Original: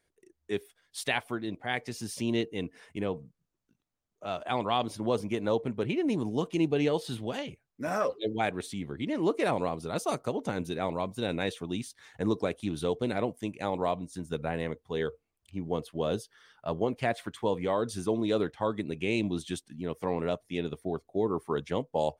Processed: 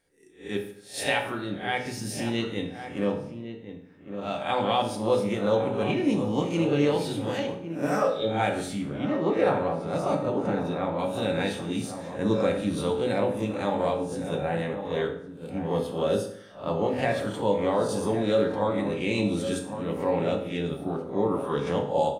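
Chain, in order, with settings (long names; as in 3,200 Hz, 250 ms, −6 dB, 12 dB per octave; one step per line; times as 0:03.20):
peak hold with a rise ahead of every peak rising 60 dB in 0.37 s
0:08.87–0:10.99: low-pass filter 1,900 Hz 6 dB per octave
slap from a distant wall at 190 metres, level −9 dB
convolution reverb RT60 0.65 s, pre-delay 3 ms, DRR 1 dB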